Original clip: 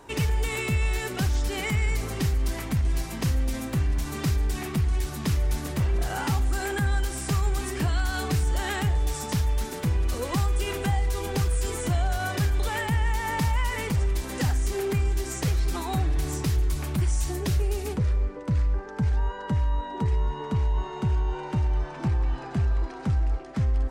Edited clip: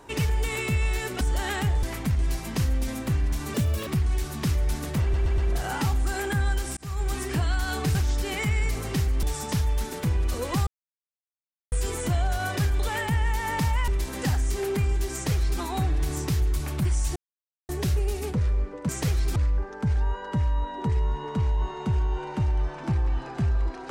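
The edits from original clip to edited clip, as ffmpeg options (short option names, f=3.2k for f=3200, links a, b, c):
-filter_complex "[0:a]asplit=17[a][b][c][d][e][f][g][h][i][j][k][l][m][n][o][p][q];[a]atrim=end=1.212[r];[b]atrim=start=8.408:end=9.032[s];[c]atrim=start=2.488:end=4.204[t];[d]atrim=start=4.2:end=4.69,asetpts=PTS-STARTPTS,asetrate=65709,aresample=44100[u];[e]atrim=start=4.686:end=5.962[v];[f]atrim=start=5.838:end=5.962[w];[g]atrim=start=5.838:end=5.962[x];[h]atrim=start=5.838:end=7.23,asetpts=PTS-STARTPTS,afade=t=out:st=1.388:d=0.004:c=hsin[y];[i]atrim=start=7.23:end=8.412,asetpts=PTS-STARTPTS,afade=t=in:d=0.34[z];[j]atrim=start=1.208:end=2.492[aa];[k]atrim=start=9.028:end=10.47,asetpts=PTS-STARTPTS,afade=t=out:st=1.438:d=0.004:c=hsin[ab];[l]atrim=start=10.47:end=11.52,asetpts=PTS-STARTPTS,volume=0[ac];[m]atrim=start=11.52:end=13.682,asetpts=PTS-STARTPTS,afade=t=in:d=0.004:c=hsin[ad];[n]atrim=start=14.038:end=17.32,asetpts=PTS-STARTPTS,afade=t=out:st=3.278:d=0.004:c=hsin,apad=pad_dur=0.53[ae];[o]atrim=start=17.32:end=18.522,asetpts=PTS-STARTPTS,afade=t=in:d=0.004:c=hsin[af];[p]atrim=start=15.288:end=15.762[ag];[q]atrim=start=18.518[ah];[r][s]acrossfade=d=0.004:c1=hsin:c2=hsin[ai];[ai][t]acrossfade=d=0.004:c1=hsin:c2=hsin[aj];[aj][u]acrossfade=d=0.004:c1=hsin:c2=hsin[ak];[ak][v]acrossfade=d=0.004:c1=hsin:c2=hsin[al];[al][w]acrossfade=d=0.004:c1=hsin:c2=hsin[am];[am][x]acrossfade=d=0.004:c1=hsin:c2=hsin[an];[y][z]concat=n=2:v=0:a=1[ao];[an][ao]acrossfade=d=0.004:c1=hsin:c2=hsin[ap];[ap][aa]acrossfade=d=0.004:c1=hsin:c2=hsin[aq];[ab][ac][ad]concat=n=3:v=0:a=1[ar];[aq][ar]acrossfade=d=0.004:c1=hsin:c2=hsin[as];[ae][af]concat=n=2:v=0:a=1[at];[as][at]acrossfade=d=0.004:c1=hsin:c2=hsin[au];[au][ag]acrossfade=d=0.004:c1=hsin:c2=hsin[av];[av][ah]acrossfade=d=0.004:c1=hsin:c2=hsin"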